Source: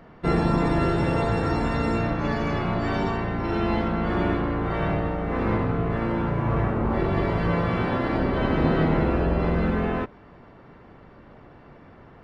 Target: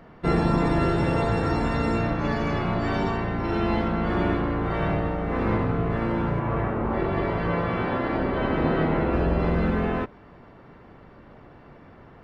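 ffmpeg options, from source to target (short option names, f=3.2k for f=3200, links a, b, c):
-filter_complex "[0:a]asettb=1/sr,asplit=3[a][b][c];[a]atrim=end=6.394[d];[b]atrim=start=6.39:end=9.13,asetpts=PTS-STARTPTS,afade=t=in:d=0.004:c=qsin,afade=t=out:st=2.736:d=0.004:c=qsin,bass=f=250:g=-4,treble=f=4k:g=-8[e];[c]atrim=start=9.126[f];[d][e]acrossfade=d=0.004:c1=hsin:c2=qsin[g];[g][f]acrossfade=d=0.004:c1=qsin:c2=hsin"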